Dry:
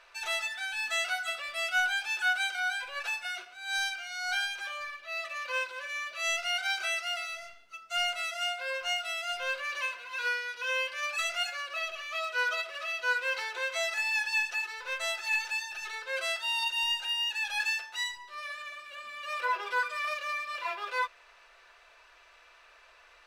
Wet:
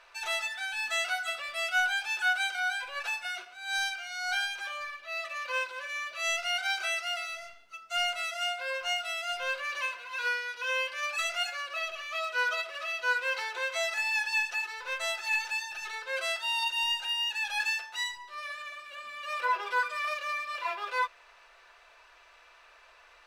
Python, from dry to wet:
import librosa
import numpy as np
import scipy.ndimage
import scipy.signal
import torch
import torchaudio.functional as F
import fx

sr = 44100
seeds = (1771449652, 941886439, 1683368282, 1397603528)

y = fx.peak_eq(x, sr, hz=890.0, db=2.5, octaves=0.77)